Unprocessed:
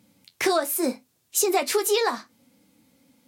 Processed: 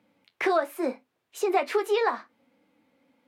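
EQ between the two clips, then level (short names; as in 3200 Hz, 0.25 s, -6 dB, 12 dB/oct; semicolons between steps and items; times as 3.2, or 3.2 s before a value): three-band isolator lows -13 dB, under 310 Hz, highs -21 dB, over 2900 Hz; 0.0 dB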